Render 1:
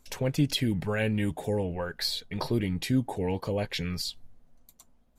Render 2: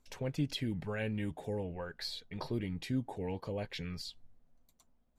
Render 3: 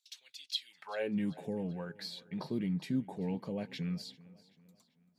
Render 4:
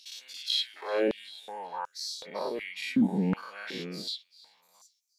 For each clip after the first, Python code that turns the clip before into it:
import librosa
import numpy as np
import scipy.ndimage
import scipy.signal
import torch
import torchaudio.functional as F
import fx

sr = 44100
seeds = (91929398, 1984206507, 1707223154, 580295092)

y1 = fx.high_shelf(x, sr, hz=8800.0, db=-11.0)
y1 = y1 * 10.0 ** (-8.5 / 20.0)
y2 = fx.filter_sweep_highpass(y1, sr, from_hz=3800.0, to_hz=180.0, start_s=0.64, end_s=1.18, q=3.4)
y2 = fx.echo_feedback(y2, sr, ms=388, feedback_pct=45, wet_db=-20.5)
y2 = y2 * 10.0 ** (-3.0 / 20.0)
y3 = fx.spec_dilate(y2, sr, span_ms=120)
y3 = fx.filter_held_highpass(y3, sr, hz=2.7, low_hz=210.0, high_hz=5900.0)